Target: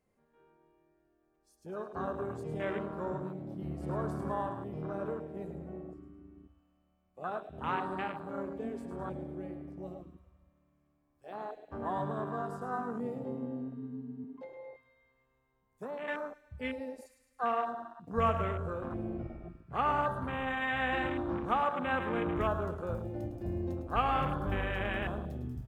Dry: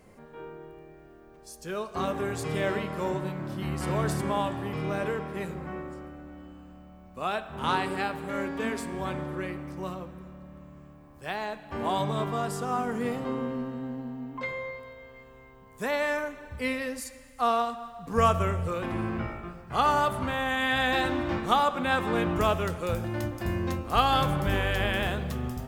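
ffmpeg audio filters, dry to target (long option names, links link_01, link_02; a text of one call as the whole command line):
ffmpeg -i in.wav -filter_complex "[0:a]aecho=1:1:106|212|318|424|530|636:0.376|0.192|0.0978|0.0499|0.0254|0.013,asettb=1/sr,asplit=3[link_01][link_02][link_03];[link_01]atrim=end=14.244[link_04];[link_02]atrim=start=14.24:end=16.08,asetpts=PTS-STARTPTS,afade=type=in:duration=0.004:curve=qsin,afade=type=out:start_time=1.836:duration=0.004:curve=qsin,acrossover=split=210|1100[link_05][link_06][link_07];[link_05]acompressor=threshold=-48dB:ratio=4[link_08];[link_06]acompressor=threshold=-32dB:ratio=4[link_09];[link_07]acompressor=threshold=-38dB:ratio=4[link_10];[link_08][link_09][link_10]amix=inputs=3:normalize=0[link_11];[link_03]atrim=start=16.076[link_12];[link_04][link_11]acrossfade=duration=0.004:curve1=hsin:curve2=qsin[link_13];[link_13][link_12]acrossfade=duration=0.004:curve1=qsin:curve2=hsin,afwtdn=0.0316,volume=-6.5dB" out.wav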